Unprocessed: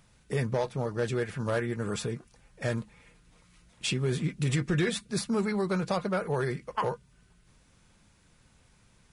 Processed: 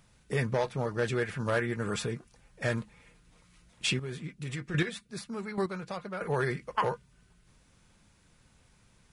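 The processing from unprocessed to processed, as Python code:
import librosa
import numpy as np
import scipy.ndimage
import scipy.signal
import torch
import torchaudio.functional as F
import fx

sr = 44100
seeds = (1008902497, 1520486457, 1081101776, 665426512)

y = fx.dynamic_eq(x, sr, hz=1900.0, q=0.71, threshold_db=-44.0, ratio=4.0, max_db=5)
y = fx.chopper(y, sr, hz=1.2, depth_pct=65, duty_pct=10, at=(3.91, 6.21))
y = y * librosa.db_to_amplitude(-1.0)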